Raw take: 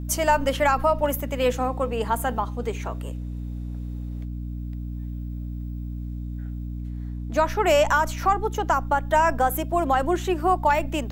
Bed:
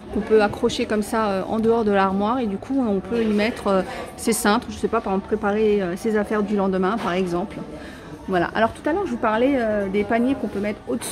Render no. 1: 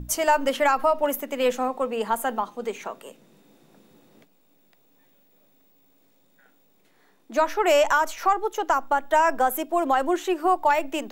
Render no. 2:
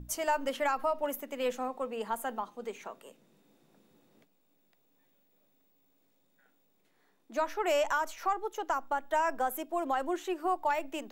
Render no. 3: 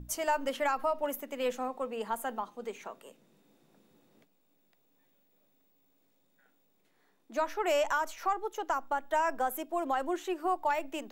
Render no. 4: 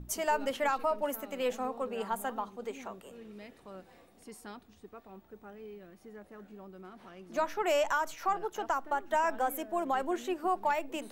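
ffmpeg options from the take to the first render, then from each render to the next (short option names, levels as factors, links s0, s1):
-af "bandreject=f=60:t=h:w=6,bandreject=f=120:t=h:w=6,bandreject=f=180:t=h:w=6,bandreject=f=240:t=h:w=6,bandreject=f=300:t=h:w=6"
-af "volume=0.335"
-af anull
-filter_complex "[1:a]volume=0.0376[s0];[0:a][s0]amix=inputs=2:normalize=0"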